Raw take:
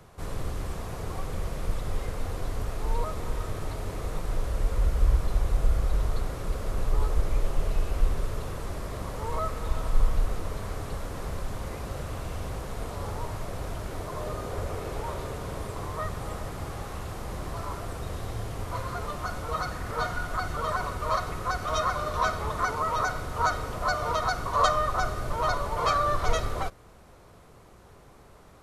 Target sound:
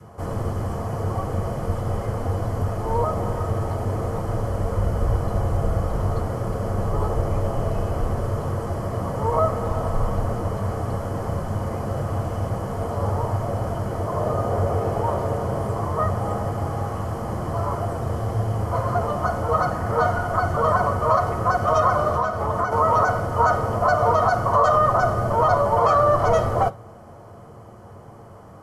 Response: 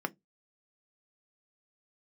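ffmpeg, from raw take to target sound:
-filter_complex "[0:a]adynamicequalizer=threshold=0.0112:dfrequency=690:dqfactor=1.6:tfrequency=690:tqfactor=1.6:attack=5:release=100:ratio=0.375:range=2:mode=boostabove:tftype=bell,asettb=1/sr,asplit=3[a][b][c];[a]atrim=end=22.144[d];[b]atrim=start=22.14:end=22.72,asetpts=PTS-STARTPTS,afade=t=in:d=0.004:c=qsin,afade=t=out:st=0.576:d=0.004:c=qsin,acompressor=threshold=-28dB:ratio=6[e];[c]atrim=start=22.716[f];[d][e]acrossfade=d=0.004:c1=hsin:c2=qsin[g];[g][f]acrossfade=d=0.004:c1=qsin:c2=hsin[h];[1:a]atrim=start_sample=2205,asetrate=25137,aresample=44100[i];[h][i]afir=irnorm=-1:irlink=0,alimiter=level_in=7.5dB:limit=-1dB:release=50:level=0:latency=1,volume=-7.5dB"

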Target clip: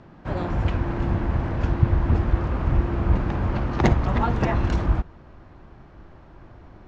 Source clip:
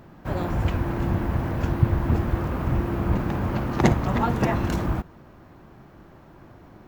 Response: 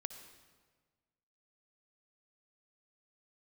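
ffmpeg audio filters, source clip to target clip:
-filter_complex "[0:a]asubboost=boost=3:cutoff=86,acrossover=split=480|6600[a][b][c];[c]acrusher=bits=3:mix=0:aa=0.5[d];[a][b][d]amix=inputs=3:normalize=0"

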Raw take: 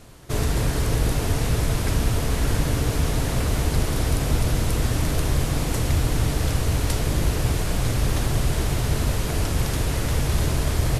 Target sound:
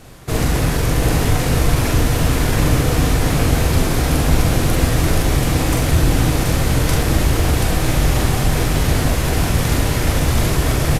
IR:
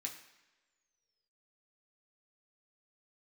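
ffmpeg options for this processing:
-filter_complex "[0:a]asetrate=46722,aresample=44100,atempo=0.943874,aecho=1:1:43|731:0.708|0.631,asplit=2[a][b];[1:a]atrim=start_sample=2205,lowpass=3.4k[c];[b][c]afir=irnorm=-1:irlink=0,volume=-8dB[d];[a][d]amix=inputs=2:normalize=0,volume=4dB"

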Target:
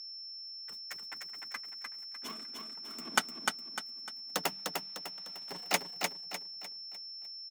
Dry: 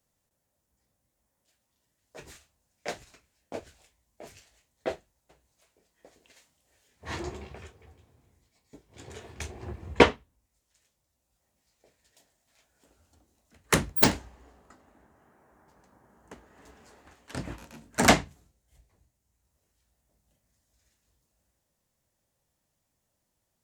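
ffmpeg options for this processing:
-af "aecho=1:1:948|1896|2844|3792|4740:0.631|0.24|0.0911|0.0346|0.0132,aeval=exprs='val(0)+0.0178*sin(2*PI*1700*n/s)':c=same,asetrate=138915,aresample=44100,volume=-7.5dB"

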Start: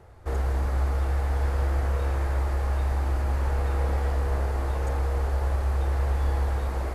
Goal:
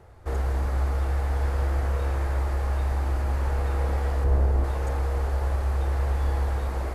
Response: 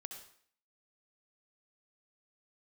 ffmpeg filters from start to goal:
-filter_complex "[0:a]asettb=1/sr,asplit=3[a][b][c];[a]atrim=end=4.244[d];[b]atrim=start=4.24:end=4.64,asetpts=PTS-STARTPTS,afade=t=in:d=0.004:c=qsin,afade=t=out:st=0.396:d=0.004:c=qsin,tiltshelf=f=740:g=5.5[e];[c]atrim=start=4.636[f];[d][e]acrossfade=d=0.004:c1=hsin:c2=qsin[g];[g][f]acrossfade=d=0.004:c1=qsin:c2=hsin"

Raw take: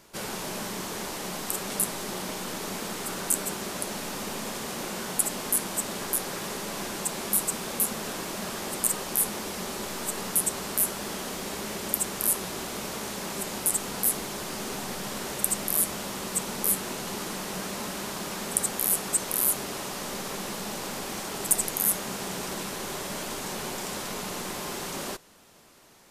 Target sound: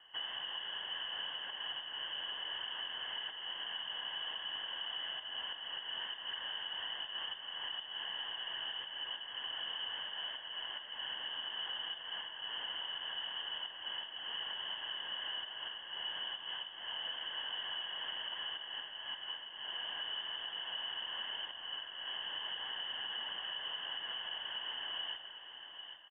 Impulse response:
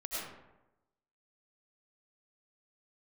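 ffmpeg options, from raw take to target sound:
-filter_complex "[0:a]acompressor=threshold=-30dB:ratio=10,asplit=3[a][b][c];[a]bandpass=f=530:t=q:w=8,volume=0dB[d];[b]bandpass=f=1.84k:t=q:w=8,volume=-6dB[e];[c]bandpass=f=2.48k:t=q:w=8,volume=-9dB[f];[d][e][f]amix=inputs=3:normalize=0,aeval=exprs='0.0282*(cos(1*acos(clip(val(0)/0.0282,-1,1)))-cos(1*PI/2))+0.000316*(cos(6*acos(clip(val(0)/0.0282,-1,1)))-cos(6*PI/2))':c=same,lowpass=f=3k:t=q:w=0.5098,lowpass=f=3k:t=q:w=0.6013,lowpass=f=3k:t=q:w=0.9,lowpass=f=3k:t=q:w=2.563,afreqshift=-3500,aecho=1:1:797:0.251,asplit=2[g][h];[1:a]atrim=start_sample=2205[i];[h][i]afir=irnorm=-1:irlink=0,volume=-11.5dB[j];[g][j]amix=inputs=2:normalize=0,alimiter=level_in=15.5dB:limit=-24dB:level=0:latency=1:release=181,volume=-15.5dB,volume=7.5dB"

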